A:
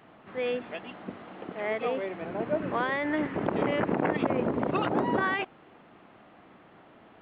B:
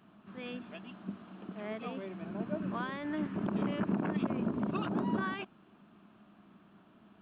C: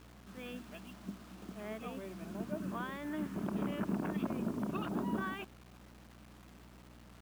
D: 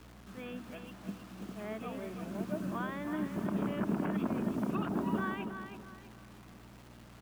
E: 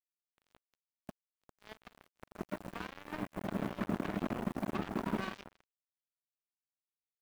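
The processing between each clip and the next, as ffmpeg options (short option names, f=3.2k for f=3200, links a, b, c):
-af "equalizer=f=200:t=o:w=0.33:g=12,equalizer=f=500:t=o:w=0.33:g=-11,equalizer=f=800:t=o:w=0.33:g=-7,equalizer=f=2k:t=o:w=0.33:g=-10,volume=-6.5dB"
-af "aeval=exprs='val(0)+0.002*(sin(2*PI*60*n/s)+sin(2*PI*2*60*n/s)/2+sin(2*PI*3*60*n/s)/3+sin(2*PI*4*60*n/s)/4+sin(2*PI*5*60*n/s)/5)':c=same,acrusher=bits=8:mix=0:aa=0.000001,volume=-3.5dB"
-filter_complex "[0:a]acrossover=split=120|1500|2500[a][b][c][d];[d]alimiter=level_in=29.5dB:limit=-24dB:level=0:latency=1:release=256,volume=-29.5dB[e];[a][b][c][e]amix=inputs=4:normalize=0,aecho=1:1:324|648|972|1296:0.398|0.135|0.046|0.0156,volume=2.5dB"
-af "asoftclip=type=tanh:threshold=-27dB,acrusher=bits=4:mix=0:aa=0.5,volume=1dB"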